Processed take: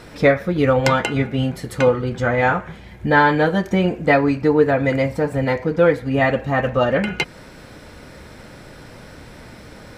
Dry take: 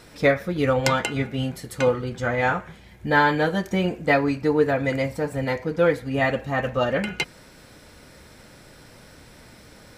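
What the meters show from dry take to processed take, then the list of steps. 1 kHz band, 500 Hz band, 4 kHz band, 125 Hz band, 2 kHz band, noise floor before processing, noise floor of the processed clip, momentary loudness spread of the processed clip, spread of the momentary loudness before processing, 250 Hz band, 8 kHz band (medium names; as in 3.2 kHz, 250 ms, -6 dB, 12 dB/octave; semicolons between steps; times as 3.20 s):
+4.5 dB, +5.0 dB, +2.0 dB, +5.5 dB, +3.5 dB, -49 dBFS, -41 dBFS, 7 LU, 7 LU, +5.5 dB, no reading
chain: treble shelf 4 kHz -9 dB; in parallel at -2 dB: compression, threshold -30 dBFS, peak gain reduction 15.5 dB; on the sum: trim +3.5 dB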